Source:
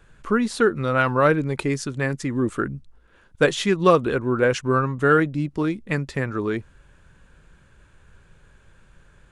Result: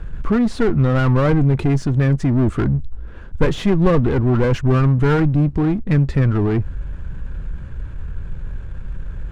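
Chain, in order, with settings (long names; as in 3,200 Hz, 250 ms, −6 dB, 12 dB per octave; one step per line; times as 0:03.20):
power curve on the samples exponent 0.7
asymmetric clip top −20.5 dBFS
RIAA equalisation playback
level −3.5 dB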